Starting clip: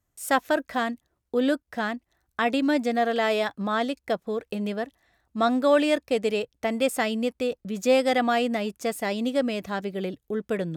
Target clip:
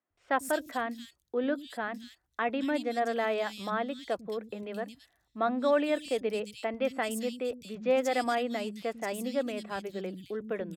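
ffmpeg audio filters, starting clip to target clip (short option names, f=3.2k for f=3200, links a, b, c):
-filter_complex "[0:a]acrossover=split=210|3200[a][b][c];[a]adelay=100[d];[c]adelay=220[e];[d][b][e]amix=inputs=3:normalize=0,volume=-5.5dB"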